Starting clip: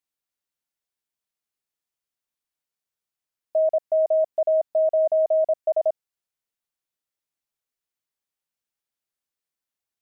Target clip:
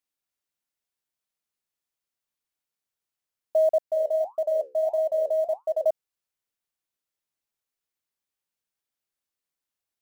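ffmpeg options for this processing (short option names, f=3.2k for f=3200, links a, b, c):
-filter_complex "[0:a]acrusher=bits=9:mode=log:mix=0:aa=0.000001,asettb=1/sr,asplit=3[a][b][c];[a]atrim=end=3.804[d];[b]atrim=start=3.8:end=5.85,asetpts=PTS-STARTPTS,afade=t=in:d=0.004:c=qsin,afade=t=out:st=2.046:d=0.004:c=qsin,flanger=delay=5.7:depth=9.1:regen=-73:speed=1.6:shape=sinusoidal[e];[c]atrim=start=5.846[f];[d][e]acrossfade=d=0.004:c1=hsin:c2=qsin[g];[g][f]acrossfade=d=0.004:c1=qsin:c2=hsin"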